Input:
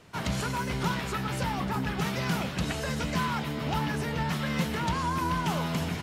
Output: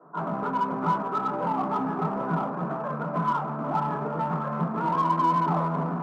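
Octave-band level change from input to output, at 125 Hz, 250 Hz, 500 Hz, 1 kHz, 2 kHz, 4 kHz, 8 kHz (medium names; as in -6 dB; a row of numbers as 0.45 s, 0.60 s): -1.0 dB, +1.5 dB, +4.0 dB, +7.5 dB, -6.5 dB, under -10 dB, under -20 dB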